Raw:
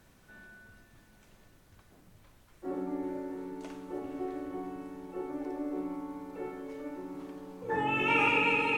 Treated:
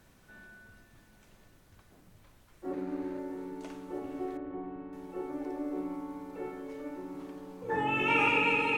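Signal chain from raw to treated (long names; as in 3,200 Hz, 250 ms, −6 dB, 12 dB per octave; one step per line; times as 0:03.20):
0:02.73–0:03.19: running median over 41 samples
0:04.37–0:04.93: high-frequency loss of the air 470 metres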